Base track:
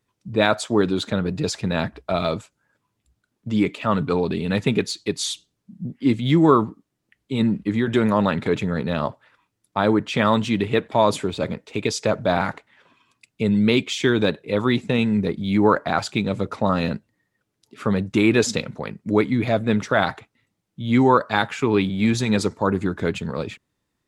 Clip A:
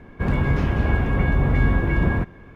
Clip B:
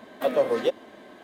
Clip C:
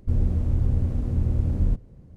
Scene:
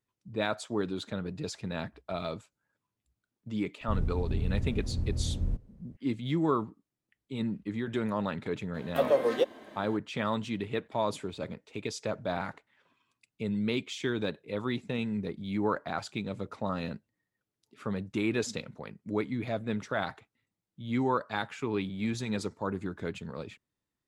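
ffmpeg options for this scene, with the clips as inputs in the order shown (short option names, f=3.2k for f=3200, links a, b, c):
-filter_complex "[0:a]volume=-12.5dB[a];[3:a]atrim=end=2.16,asetpts=PTS-STARTPTS,volume=-8.5dB,afade=t=in:d=0.004:c=hsin,afade=t=out:st=2.156:d=0.004:c=hsin,adelay=168021S[b];[2:a]atrim=end=1.23,asetpts=PTS-STARTPTS,volume=-2.5dB,afade=t=in:d=0.004:c=hsin,afade=t=out:st=1.226:d=0.004:c=hsin,adelay=385434S[c];[a][b][c]amix=inputs=3:normalize=0"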